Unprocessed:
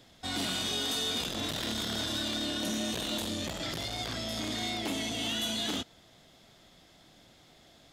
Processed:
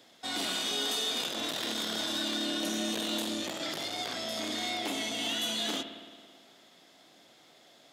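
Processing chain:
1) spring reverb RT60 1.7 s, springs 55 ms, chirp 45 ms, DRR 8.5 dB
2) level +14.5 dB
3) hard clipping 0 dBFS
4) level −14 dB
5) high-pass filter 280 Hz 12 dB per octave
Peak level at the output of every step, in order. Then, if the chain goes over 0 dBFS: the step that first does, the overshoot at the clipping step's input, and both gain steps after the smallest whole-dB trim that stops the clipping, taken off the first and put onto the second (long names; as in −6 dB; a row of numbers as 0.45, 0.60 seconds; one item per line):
−20.0, −5.5, −5.5, −19.5, −20.0 dBFS
no step passes full scale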